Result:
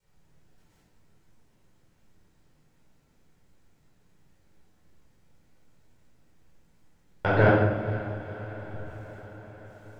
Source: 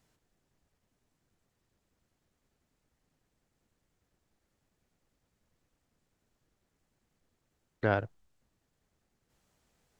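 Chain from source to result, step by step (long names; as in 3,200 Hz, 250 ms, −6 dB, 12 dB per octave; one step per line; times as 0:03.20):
slices reordered back to front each 115 ms, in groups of 7
feedback delay with all-pass diffusion 502 ms, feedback 64%, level −14.5 dB
rectangular room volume 720 cubic metres, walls mixed, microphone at 4.6 metres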